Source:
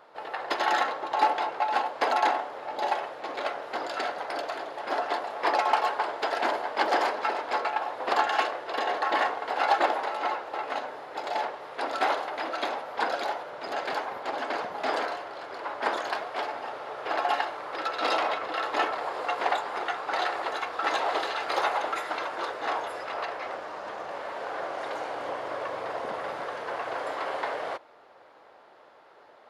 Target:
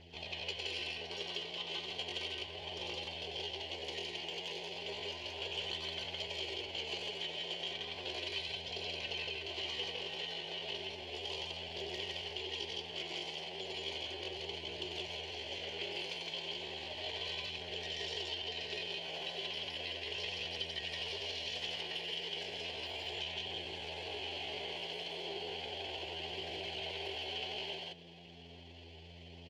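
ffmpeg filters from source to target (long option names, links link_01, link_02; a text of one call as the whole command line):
ffmpeg -i in.wav -filter_complex "[0:a]asplit=3[link_01][link_02][link_03];[link_01]bandpass=frequency=270:width_type=q:width=8,volume=0dB[link_04];[link_02]bandpass=frequency=2290:width_type=q:width=8,volume=-6dB[link_05];[link_03]bandpass=frequency=3010:width_type=q:width=8,volume=-9dB[link_06];[link_04][link_05][link_06]amix=inputs=3:normalize=0,acompressor=threshold=-57dB:ratio=5,aeval=exprs='val(0)+0.000282*(sin(2*PI*60*n/s)+sin(2*PI*2*60*n/s)/2+sin(2*PI*3*60*n/s)/3+sin(2*PI*4*60*n/s)/4+sin(2*PI*5*60*n/s)/5)':channel_layout=same,equalizer=frequency=500:width_type=o:width=1:gain=6,equalizer=frequency=2000:width_type=o:width=1:gain=8,equalizer=frequency=4000:width_type=o:width=1:gain=-4,equalizer=frequency=8000:width_type=o:width=1:gain=3,flanger=delay=0.1:depth=9.2:regen=-36:speed=0.34:shape=triangular,asplit=2[link_07][link_08];[link_08]aecho=0:1:93.29|166.2:0.501|0.891[link_09];[link_07][link_09]amix=inputs=2:normalize=0,asetrate=62367,aresample=44100,atempo=0.707107,bass=frequency=250:gain=3,treble=frequency=4000:gain=6,volume=13dB" out.wav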